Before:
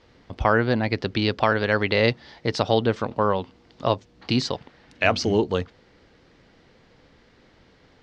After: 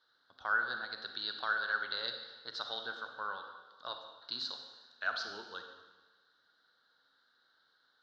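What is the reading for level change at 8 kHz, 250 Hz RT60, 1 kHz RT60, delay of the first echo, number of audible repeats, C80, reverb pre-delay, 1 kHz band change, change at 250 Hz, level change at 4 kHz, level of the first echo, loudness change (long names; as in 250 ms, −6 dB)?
can't be measured, 1.2 s, 1.3 s, no echo audible, no echo audible, 8.0 dB, 35 ms, −14.0 dB, −33.0 dB, −8.5 dB, no echo audible, −14.0 dB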